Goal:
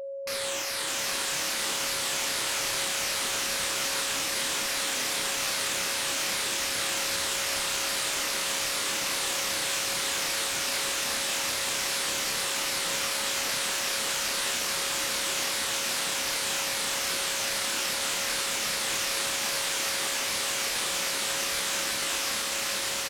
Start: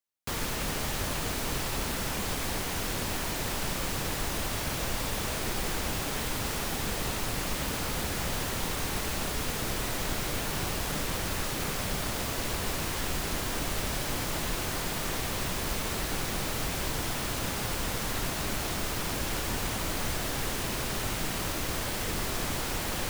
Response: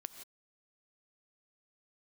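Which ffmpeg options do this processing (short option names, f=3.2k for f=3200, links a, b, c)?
-filter_complex "[0:a]afftfilt=real='re*pow(10,10/40*sin(2*PI*(0.8*log(max(b,1)*sr/1024/100)/log(2)-(-2.5)*(pts-256)/sr)))':imag='im*pow(10,10/40*sin(2*PI*(0.8*log(max(b,1)*sr/1024/100)/log(2)-(-2.5)*(pts-256)/sr)))':win_size=1024:overlap=0.75,afftfilt=real='re*lt(hypot(re,im),0.0447)':imag='im*lt(hypot(re,im),0.0447)':win_size=1024:overlap=0.75,lowpass=10k,equalizer=f=640:w=1.1:g=-3.5,dynaudnorm=f=380:g=9:m=15.5dB,alimiter=level_in=2dB:limit=-24dB:level=0:latency=1:release=72,volume=-2dB,acontrast=59,aeval=exprs='val(0)+0.02*sin(2*PI*550*n/s)':c=same,asplit=2[a][b];[b]adelay=29,volume=-3dB[c];[a][c]amix=inputs=2:normalize=0,asplit=2[d][e];[e]aecho=0:1:601:0.708[f];[d][f]amix=inputs=2:normalize=0,volume=-4dB"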